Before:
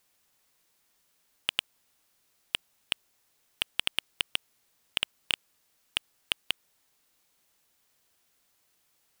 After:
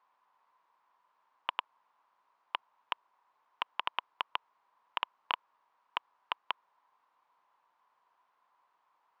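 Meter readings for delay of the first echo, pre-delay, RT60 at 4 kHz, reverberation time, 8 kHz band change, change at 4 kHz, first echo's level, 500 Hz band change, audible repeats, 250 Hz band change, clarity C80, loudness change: none, none, none, none, under -30 dB, -10.5 dB, none, -1.0 dB, none, -10.0 dB, none, -6.0 dB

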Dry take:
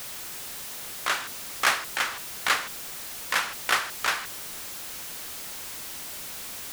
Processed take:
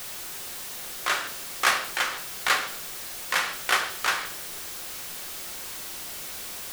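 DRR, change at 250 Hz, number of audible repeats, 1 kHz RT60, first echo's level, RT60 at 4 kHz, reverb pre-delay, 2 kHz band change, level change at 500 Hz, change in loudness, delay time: 5.5 dB, +0.5 dB, none, 0.65 s, none, 0.80 s, 3 ms, +1.0 dB, +2.0 dB, +1.0 dB, none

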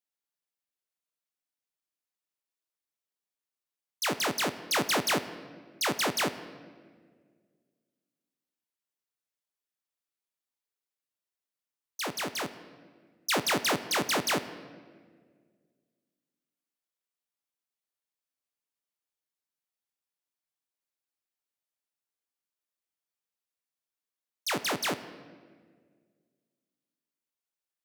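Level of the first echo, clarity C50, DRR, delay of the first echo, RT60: none, 12.5 dB, 11.0 dB, none, 1.8 s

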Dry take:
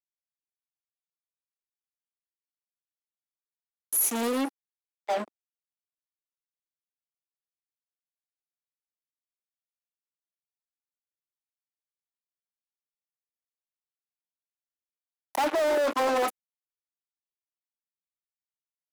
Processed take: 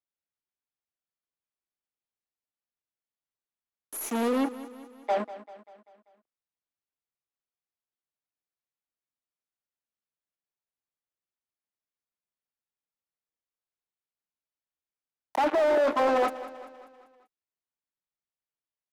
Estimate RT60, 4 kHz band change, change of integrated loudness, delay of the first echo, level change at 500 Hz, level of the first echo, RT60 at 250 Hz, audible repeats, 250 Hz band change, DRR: none, -4.0 dB, +0.5 dB, 0.195 s, +2.0 dB, -15.5 dB, none, 4, +2.0 dB, none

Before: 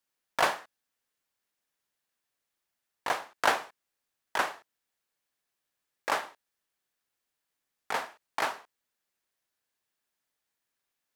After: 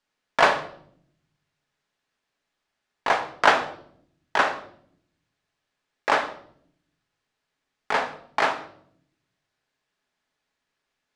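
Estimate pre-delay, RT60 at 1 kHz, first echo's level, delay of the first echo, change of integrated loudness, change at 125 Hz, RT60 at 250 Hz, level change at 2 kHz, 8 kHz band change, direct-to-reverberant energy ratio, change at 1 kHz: 5 ms, 0.55 s, none, none, +8.0 dB, +10.0 dB, 1.2 s, +8.5 dB, 0.0 dB, 6.0 dB, +8.0 dB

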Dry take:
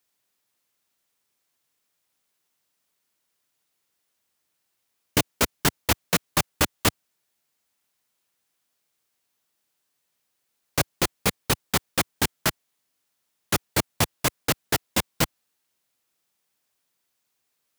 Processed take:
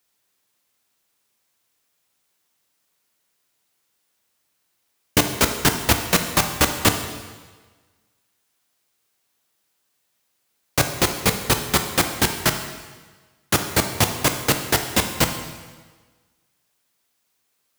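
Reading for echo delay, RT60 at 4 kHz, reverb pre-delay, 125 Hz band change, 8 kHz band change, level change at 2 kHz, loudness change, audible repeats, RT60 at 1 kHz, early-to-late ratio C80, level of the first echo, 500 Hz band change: none, 1.3 s, 5 ms, +4.5 dB, +5.0 dB, +5.0 dB, +4.5 dB, none, 1.4 s, 9.5 dB, none, +5.0 dB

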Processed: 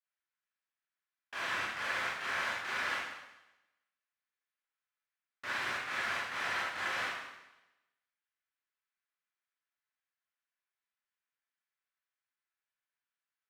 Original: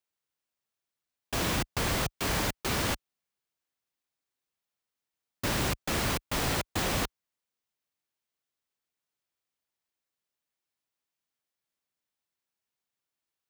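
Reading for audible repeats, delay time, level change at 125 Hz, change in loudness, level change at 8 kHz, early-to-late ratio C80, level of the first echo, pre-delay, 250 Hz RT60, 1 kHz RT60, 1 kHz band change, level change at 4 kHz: none, none, -24.5 dB, -5.0 dB, -15.0 dB, 3.5 dB, none, 22 ms, 0.95 s, 0.95 s, -3.0 dB, -7.0 dB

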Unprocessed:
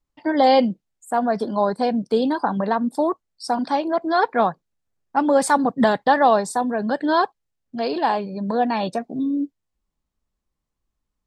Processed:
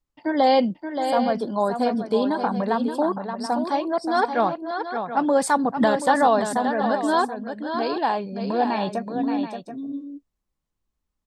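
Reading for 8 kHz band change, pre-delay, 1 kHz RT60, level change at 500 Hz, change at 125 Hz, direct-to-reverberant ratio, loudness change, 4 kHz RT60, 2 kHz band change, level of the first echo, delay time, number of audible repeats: -1.5 dB, none, none, -1.5 dB, -1.5 dB, none, -2.0 dB, none, -1.5 dB, -7.5 dB, 0.576 s, 2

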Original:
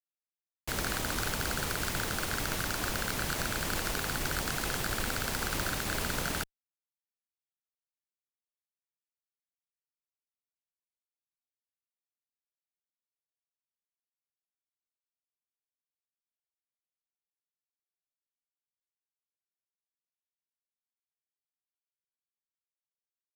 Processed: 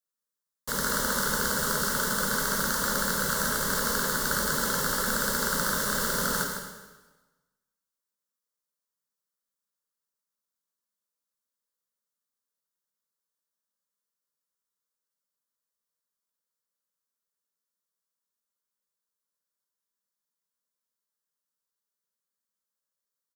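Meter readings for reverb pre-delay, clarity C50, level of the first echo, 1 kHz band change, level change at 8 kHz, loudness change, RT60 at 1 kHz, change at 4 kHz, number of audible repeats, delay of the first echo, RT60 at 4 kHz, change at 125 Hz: 7 ms, 3.0 dB, -9.0 dB, +6.5 dB, +7.5 dB, +6.0 dB, 1.2 s, +4.0 dB, 1, 0.156 s, 1.1 s, 0.0 dB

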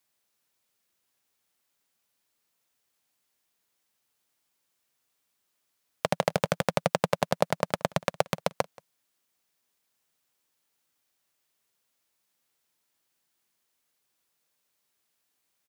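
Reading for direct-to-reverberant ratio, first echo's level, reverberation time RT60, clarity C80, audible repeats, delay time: none, -24.0 dB, none, none, 1, 0.179 s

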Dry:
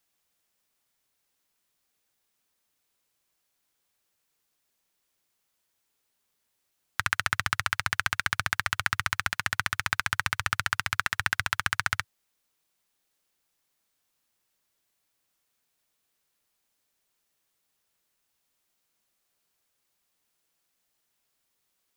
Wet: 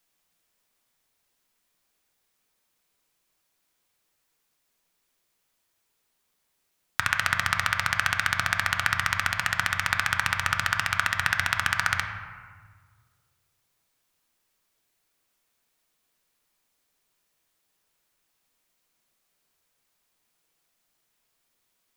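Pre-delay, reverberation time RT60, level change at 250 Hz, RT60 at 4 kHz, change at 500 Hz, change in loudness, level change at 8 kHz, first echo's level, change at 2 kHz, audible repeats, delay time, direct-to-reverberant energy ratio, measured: 3 ms, 1.6 s, +3.5 dB, 1.0 s, +4.5 dB, +3.0 dB, +2.0 dB, none, +3.5 dB, none, none, 3.5 dB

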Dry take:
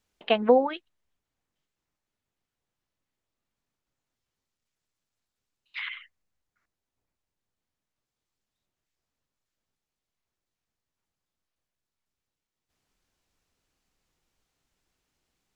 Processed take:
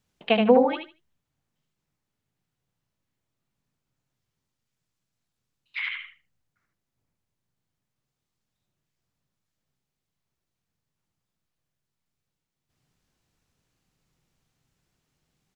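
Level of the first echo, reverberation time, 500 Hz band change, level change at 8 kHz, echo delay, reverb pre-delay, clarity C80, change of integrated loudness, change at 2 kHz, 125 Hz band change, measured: -5.0 dB, none, +2.0 dB, n/a, 76 ms, none, none, +2.5 dB, +4.5 dB, n/a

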